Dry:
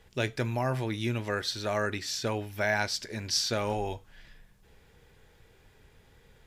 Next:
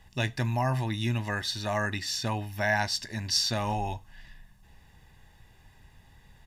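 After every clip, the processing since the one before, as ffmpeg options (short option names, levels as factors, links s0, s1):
-af "aecho=1:1:1.1:0.69"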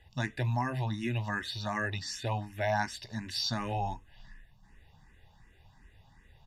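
-filter_complex "[0:a]highshelf=f=8000:g=-11.5,asplit=2[s0][s1];[s1]afreqshift=2.7[s2];[s0][s2]amix=inputs=2:normalize=1"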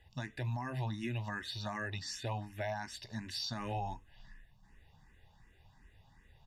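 -af "alimiter=level_in=1.19:limit=0.0631:level=0:latency=1:release=138,volume=0.841,volume=0.668"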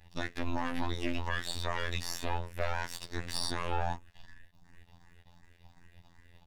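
-af "aeval=exprs='max(val(0),0)':c=same,afftfilt=real='hypot(re,im)*cos(PI*b)':imag='0':win_size=2048:overlap=0.75,aeval=exprs='0.0668*(cos(1*acos(clip(val(0)/0.0668,-1,1)))-cos(1*PI/2))+0.0188*(cos(2*acos(clip(val(0)/0.0668,-1,1)))-cos(2*PI/2))+0.00596*(cos(5*acos(clip(val(0)/0.0668,-1,1)))-cos(5*PI/2))+0.00841*(cos(6*acos(clip(val(0)/0.0668,-1,1)))-cos(6*PI/2))':c=same,volume=2.24"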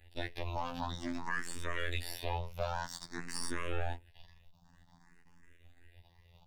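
-filter_complex "[0:a]asplit=2[s0][s1];[s1]afreqshift=0.52[s2];[s0][s2]amix=inputs=2:normalize=1"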